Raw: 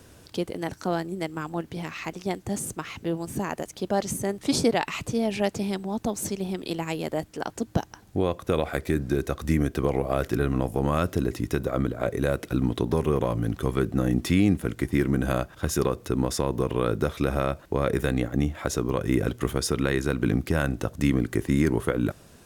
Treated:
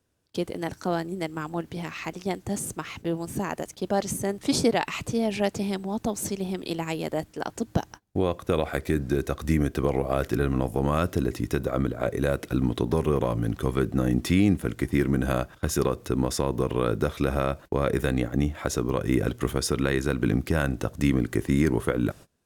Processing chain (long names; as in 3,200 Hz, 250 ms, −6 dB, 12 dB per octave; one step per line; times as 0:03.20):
noise gate −41 dBFS, range −24 dB